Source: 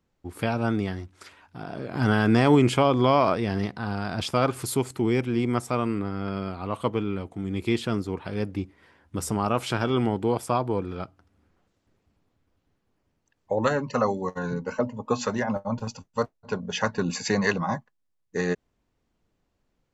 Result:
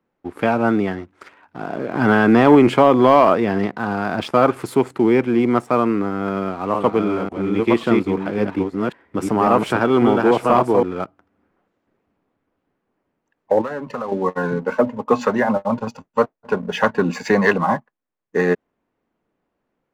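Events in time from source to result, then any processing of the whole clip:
6.2–10.83 reverse delay 0.545 s, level -3 dB
13.61–14.12 compressor, threshold -33 dBFS
whole clip: three-band isolator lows -16 dB, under 180 Hz, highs -16 dB, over 2500 Hz; sample leveller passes 1; gain +6.5 dB

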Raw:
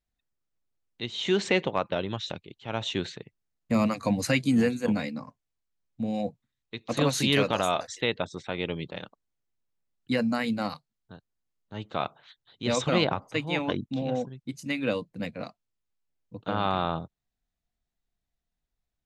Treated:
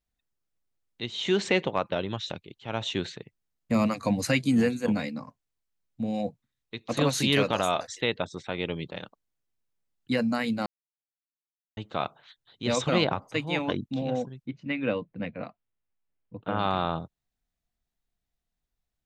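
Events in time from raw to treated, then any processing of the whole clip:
10.66–11.77 mute
14.46–16.59 LPF 3000 Hz 24 dB/oct

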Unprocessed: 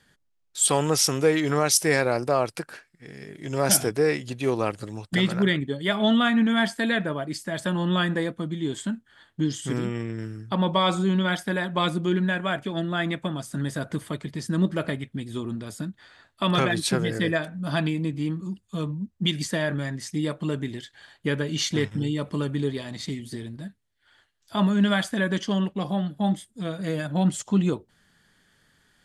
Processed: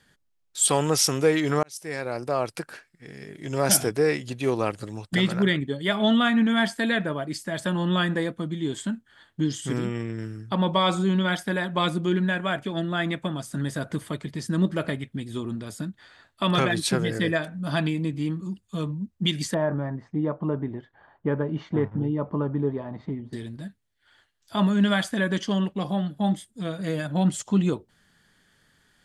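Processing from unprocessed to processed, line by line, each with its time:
1.63–2.66 fade in
19.54–23.33 synth low-pass 950 Hz, resonance Q 1.9

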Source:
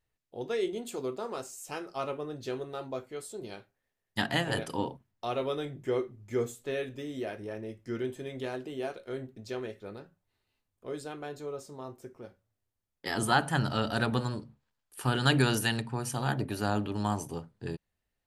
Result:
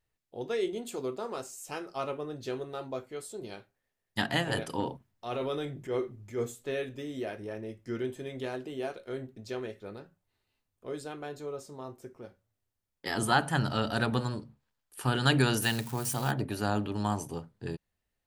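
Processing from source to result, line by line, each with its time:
4.8–6.43 transient shaper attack -7 dB, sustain +3 dB
15.62–16.31 switching spikes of -31.5 dBFS

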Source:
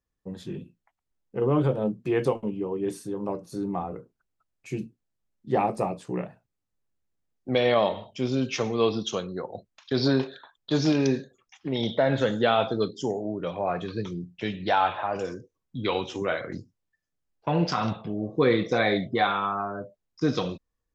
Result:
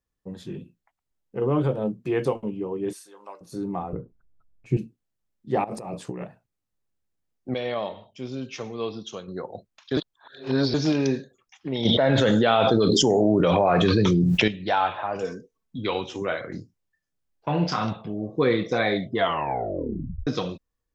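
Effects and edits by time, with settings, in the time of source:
2.93–3.41 HPF 1100 Hz
3.93–4.77 tilt -4 dB/oct
5.64–6.23 negative-ratio compressor -34 dBFS
7.54–9.28 gain -7 dB
9.97–10.74 reverse
11.85–14.48 fast leveller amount 100%
15.22–15.79 comb 4.5 ms
16.51–17.85 doubler 28 ms -7.5 dB
19.13 tape stop 1.14 s

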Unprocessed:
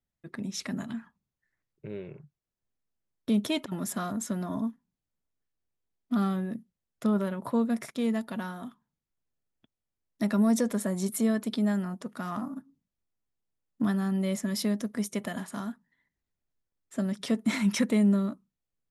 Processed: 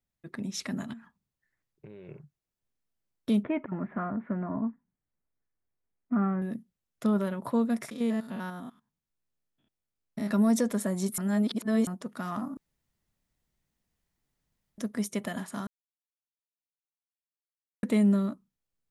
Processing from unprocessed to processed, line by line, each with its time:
0.93–2.09 compressor 12:1, threshold -42 dBFS
3.43–6.42 steep low-pass 2300 Hz 48 dB/oct
7.91–10.31 stepped spectrum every 0.1 s
11.18–11.87 reverse
12.57–14.78 room tone
15.67–17.83 mute

